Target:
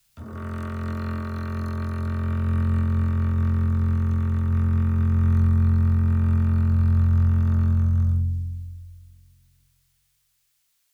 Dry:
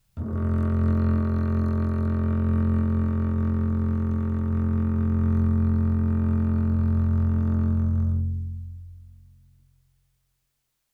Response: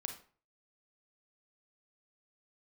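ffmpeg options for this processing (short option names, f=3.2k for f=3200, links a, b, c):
-filter_complex "[0:a]tiltshelf=f=970:g=-8.5,acrossover=split=160|420|990[a][b][c][d];[a]dynaudnorm=f=220:g=21:m=13dB[e];[e][b][c][d]amix=inputs=4:normalize=0"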